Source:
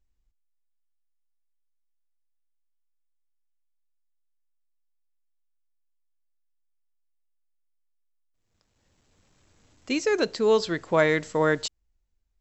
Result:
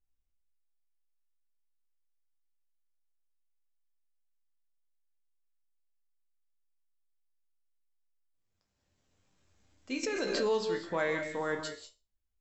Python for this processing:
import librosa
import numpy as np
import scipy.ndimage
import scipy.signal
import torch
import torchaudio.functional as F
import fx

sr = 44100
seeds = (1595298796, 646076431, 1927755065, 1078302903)

y = fx.resonator_bank(x, sr, root=36, chord='sus4', decay_s=0.27)
y = fx.rev_gated(y, sr, seeds[0], gate_ms=220, shape='rising', drr_db=6.5)
y = fx.pre_swell(y, sr, db_per_s=29.0, at=(10.03, 10.67))